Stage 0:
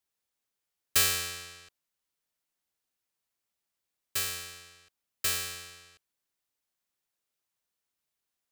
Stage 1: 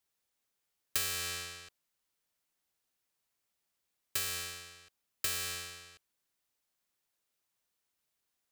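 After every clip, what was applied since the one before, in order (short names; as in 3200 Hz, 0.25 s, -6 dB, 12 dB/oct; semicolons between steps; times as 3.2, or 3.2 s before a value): compressor 6:1, threshold -33 dBFS, peak gain reduction 12.5 dB; gain +2 dB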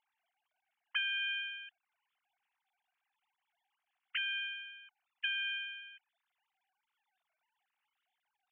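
sine-wave speech; bell 760 Hz +2.5 dB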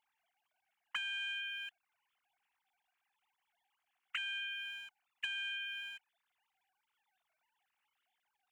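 sample leveller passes 1; compressor 5:1, threshold -42 dBFS, peak gain reduction 12.5 dB; gain +3.5 dB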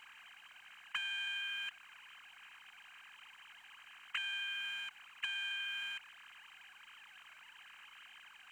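per-bin compression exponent 0.4; gain -2 dB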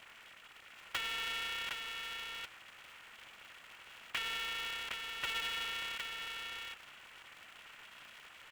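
echo 0.761 s -4.5 dB; polarity switched at an audio rate 220 Hz; gain +1 dB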